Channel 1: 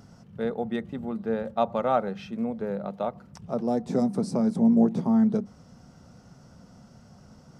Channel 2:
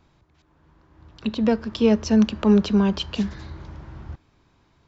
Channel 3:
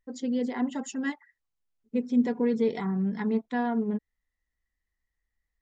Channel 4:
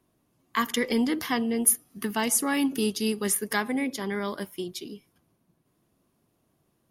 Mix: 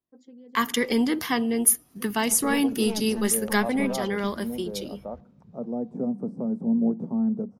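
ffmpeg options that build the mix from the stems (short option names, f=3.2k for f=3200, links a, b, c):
-filter_complex "[0:a]acrossover=split=2500[a][b];[b]acompressor=threshold=-59dB:ratio=4:attack=1:release=60[c];[a][c]amix=inputs=2:normalize=0,equalizer=f=125:t=o:w=1:g=5,equalizer=f=250:t=o:w=1:g=10,equalizer=f=500:t=o:w=1:g=8,equalizer=f=1k:t=o:w=1:g=4,equalizer=f=2k:t=o:w=1:g=-6,equalizer=f=4k:t=o:w=1:g=-10,adelay=2050,volume=-15dB[d];[1:a]aeval=exprs='(tanh(4.47*val(0)+0.75)-tanh(0.75))/4.47':c=same,adelay=1050,volume=-10.5dB[e];[2:a]highpass=210,highshelf=f=2.8k:g=-11.5,acompressor=threshold=-33dB:ratio=6,adelay=50,volume=-12.5dB[f];[3:a]agate=range=-24dB:threshold=-48dB:ratio=16:detection=peak,volume=2dB[g];[d][e][f][g]amix=inputs=4:normalize=0"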